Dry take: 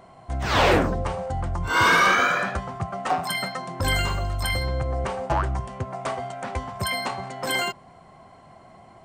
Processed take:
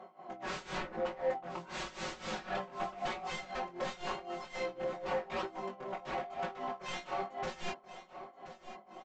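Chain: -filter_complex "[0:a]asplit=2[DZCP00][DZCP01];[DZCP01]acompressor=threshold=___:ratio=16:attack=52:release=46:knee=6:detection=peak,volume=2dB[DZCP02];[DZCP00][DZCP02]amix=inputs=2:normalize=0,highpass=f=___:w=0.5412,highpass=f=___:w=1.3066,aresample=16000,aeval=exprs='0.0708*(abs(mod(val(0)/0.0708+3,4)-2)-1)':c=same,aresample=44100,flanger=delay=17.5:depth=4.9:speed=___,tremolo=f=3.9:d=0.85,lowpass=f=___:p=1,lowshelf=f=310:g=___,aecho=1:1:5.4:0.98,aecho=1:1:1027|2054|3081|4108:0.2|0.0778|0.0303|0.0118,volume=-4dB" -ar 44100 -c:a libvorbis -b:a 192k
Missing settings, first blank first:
-32dB, 240, 240, 0.93, 1200, -2.5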